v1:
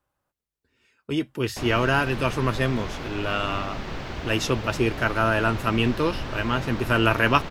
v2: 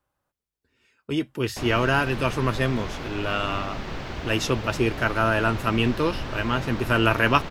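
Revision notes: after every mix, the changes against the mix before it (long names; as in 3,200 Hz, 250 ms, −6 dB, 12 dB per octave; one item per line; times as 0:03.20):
nothing changed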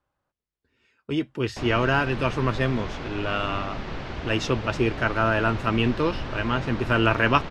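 master: add high-frequency loss of the air 82 metres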